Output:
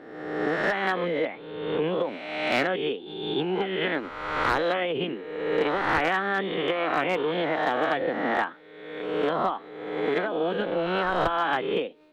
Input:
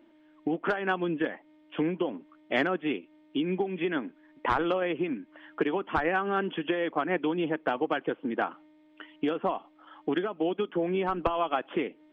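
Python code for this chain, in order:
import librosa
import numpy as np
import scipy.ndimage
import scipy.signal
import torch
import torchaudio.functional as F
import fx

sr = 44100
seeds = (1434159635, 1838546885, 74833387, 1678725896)

y = fx.spec_swells(x, sr, rise_s=1.25)
y = fx.formant_shift(y, sr, semitones=3)
y = np.clip(y, -10.0 ** (-15.5 / 20.0), 10.0 ** (-15.5 / 20.0))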